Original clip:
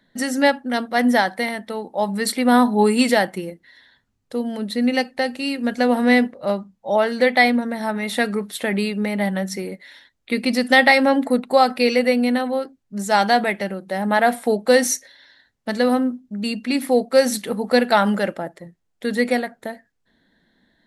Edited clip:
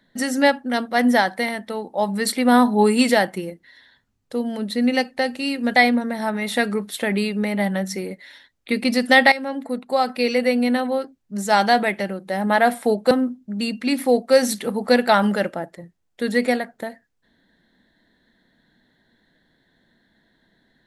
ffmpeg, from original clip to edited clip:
-filter_complex "[0:a]asplit=4[s0][s1][s2][s3];[s0]atrim=end=5.762[s4];[s1]atrim=start=7.368:end=10.93,asetpts=PTS-STARTPTS,afade=t=out:st=3.558:d=0.004:c=hsin:silence=0.188365[s5];[s2]atrim=start=10.93:end=14.722,asetpts=PTS-STARTPTS,afade=t=in:d=1.44:silence=0.188365[s6];[s3]atrim=start=15.938[s7];[s5][s6]concat=n=2:v=0:a=1[s8];[s4][s8]acrossfade=d=0.004:c1=hsin:c2=hsin[s9];[s9][s7]acrossfade=d=0.004:c1=hsin:c2=hsin"

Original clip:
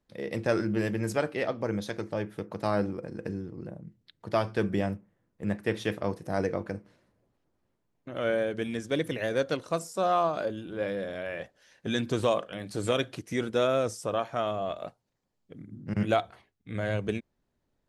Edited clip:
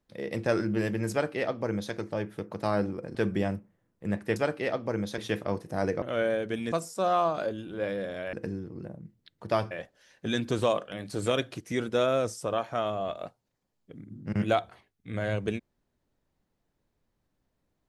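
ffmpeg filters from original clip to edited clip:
-filter_complex "[0:a]asplit=8[s0][s1][s2][s3][s4][s5][s6][s7];[s0]atrim=end=3.152[s8];[s1]atrim=start=4.528:end=5.742[s9];[s2]atrim=start=1.108:end=1.932[s10];[s3]atrim=start=5.738:end=6.582[s11];[s4]atrim=start=8.098:end=8.802[s12];[s5]atrim=start=9.708:end=11.322[s13];[s6]atrim=start=3.148:end=4.532[s14];[s7]atrim=start=11.318[s15];[s8][s9]acrossfade=d=0.004:c1=hsin:c2=hsin[s16];[s16][s10]acrossfade=d=0.004:c1=hsin:c2=hsin[s17];[s17][s11]acrossfade=d=0.004:c1=hsin:c2=hsin[s18];[s18][s12]acrossfade=d=0.004:c1=hsin:c2=hsin[s19];[s19][s13]acrossfade=d=0.004:c1=hsin:c2=hsin[s20];[s20][s14]acrossfade=d=0.004:c1=hsin:c2=hsin[s21];[s21][s15]acrossfade=d=0.004:c1=hsin:c2=hsin"

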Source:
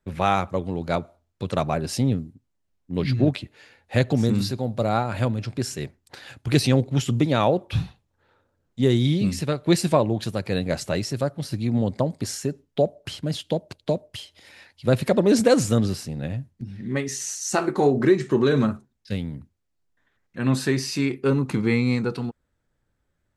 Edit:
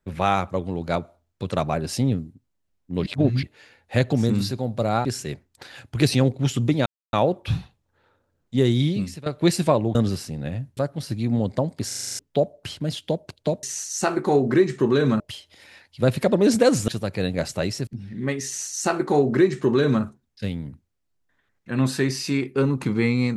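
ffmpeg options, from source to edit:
-filter_complex "[0:a]asplit=20[s0][s1][s2][s3][s4][s5][s6][s7][s8][s9][s10][s11][s12][s13][s14][s15][s16][s17][s18][s19];[s0]atrim=end=3.062[s20];[s1]atrim=start=3.058:end=3.432,asetpts=PTS-STARTPTS,areverse[s21];[s2]atrim=start=3.428:end=5.052[s22];[s3]atrim=start=5.568:end=7.38,asetpts=PTS-STARTPTS,afade=t=out:st=1.808:d=0.004:c=hsin,apad=pad_dur=0.27[s23];[s4]atrim=start=7.38:end=9.51,asetpts=PTS-STARTPTS,afade=t=in:d=0.004:c=hsin,afade=t=out:st=1.71:d=0.42:silence=0.149624[s24];[s5]atrim=start=9.51:end=10.202,asetpts=PTS-STARTPTS,afade=t=in:d=0.004:c=hsin:silence=0.149624[s25];[s6]atrim=start=15.728:end=16.552[s26];[s7]atrim=start=11.188:end=12.332[s27];[s8]atrim=start=12.288:end=12.332[s28];[s9]atrim=start=12.288:end=12.332[s29];[s10]atrim=start=12.288:end=12.332[s30];[s11]atrim=start=12.288:end=12.332[s31];[s12]atrim=start=12.288:end=12.332[s32];[s13]atrim=start=12.288:end=12.332[s33];[s14]atrim=start=12.288:end=12.332[s34];[s15]atrim=start=12.608:end=14.052[s35];[s16]atrim=start=17.138:end=18.712[s36];[s17]atrim=start=14.048:end=15.732[s37];[s18]atrim=start=10.198:end=11.192[s38];[s19]atrim=start=16.548[s39];[s20][s21]acrossfade=d=0.004:c1=hsin:c2=hsin[s40];[s40][s22]acrossfade=d=0.004:c1=hsin:c2=hsin[s41];[s23][s24][s25]concat=n=3:v=0:a=1[s42];[s41][s42]acrossfade=d=0.004:c1=hsin:c2=hsin[s43];[s43][s26]acrossfade=d=0.004:c1=hsin:c2=hsin[s44];[s44][s27]acrossfade=d=0.004:c1=hsin:c2=hsin[s45];[s45][s28]acrossfade=d=0.004:c1=hsin:c2=hsin[s46];[s46][s29]acrossfade=d=0.004:c1=hsin:c2=hsin[s47];[s47][s30]acrossfade=d=0.004:c1=hsin:c2=hsin[s48];[s48][s31]acrossfade=d=0.004:c1=hsin:c2=hsin[s49];[s49][s32]acrossfade=d=0.004:c1=hsin:c2=hsin[s50];[s50][s33]acrossfade=d=0.004:c1=hsin:c2=hsin[s51];[s51][s34]acrossfade=d=0.004:c1=hsin:c2=hsin[s52];[s52][s35]acrossfade=d=0.004:c1=hsin:c2=hsin[s53];[s53][s36]acrossfade=d=0.004:c1=hsin:c2=hsin[s54];[s54][s37]acrossfade=d=0.004:c1=hsin:c2=hsin[s55];[s55][s38]acrossfade=d=0.004:c1=hsin:c2=hsin[s56];[s56][s39]acrossfade=d=0.004:c1=hsin:c2=hsin"

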